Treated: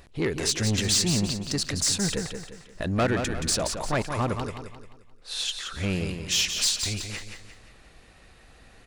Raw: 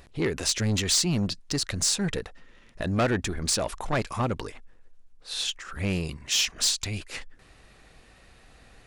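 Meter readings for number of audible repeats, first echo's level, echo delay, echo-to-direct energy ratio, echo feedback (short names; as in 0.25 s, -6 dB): 4, -7.0 dB, 0.175 s, -6.0 dB, 40%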